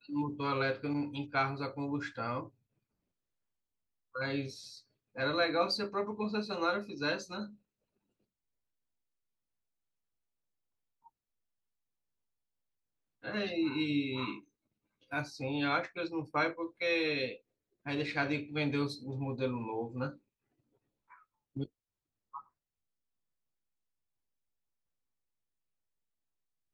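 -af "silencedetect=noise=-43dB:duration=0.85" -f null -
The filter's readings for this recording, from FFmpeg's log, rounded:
silence_start: 2.46
silence_end: 4.16 | silence_duration: 1.69
silence_start: 7.47
silence_end: 13.24 | silence_duration: 5.77
silence_start: 20.11
silence_end: 21.56 | silence_duration: 1.45
silence_start: 22.40
silence_end: 26.74 | silence_duration: 4.34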